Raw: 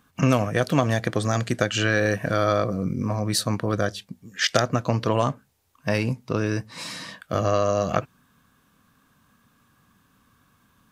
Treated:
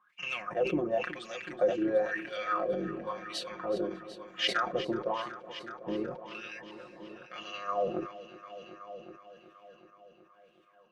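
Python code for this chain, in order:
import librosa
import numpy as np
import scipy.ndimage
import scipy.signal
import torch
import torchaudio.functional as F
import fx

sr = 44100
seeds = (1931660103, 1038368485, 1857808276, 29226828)

y = fx.octave_divider(x, sr, octaves=2, level_db=3.0)
y = fx.highpass(y, sr, hz=94.0, slope=6)
y = y + 0.79 * np.pad(y, (int(5.6 * sr / 1000.0), 0))[:len(y)]
y = fx.wah_lfo(y, sr, hz=0.97, low_hz=340.0, high_hz=3000.0, q=5.7)
y = fx.echo_heads(y, sr, ms=373, heads='all three', feedback_pct=45, wet_db=-17.0)
y = fx.sustainer(y, sr, db_per_s=120.0)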